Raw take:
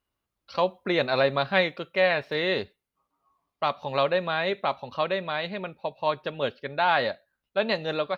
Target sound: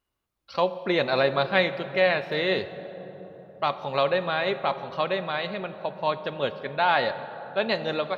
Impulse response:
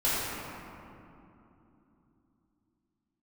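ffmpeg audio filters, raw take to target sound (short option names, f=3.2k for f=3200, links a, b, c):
-filter_complex "[0:a]asplit=2[a][b];[1:a]atrim=start_sample=2205,asetrate=26901,aresample=44100[c];[b][c]afir=irnorm=-1:irlink=0,volume=-26.5dB[d];[a][d]amix=inputs=2:normalize=0"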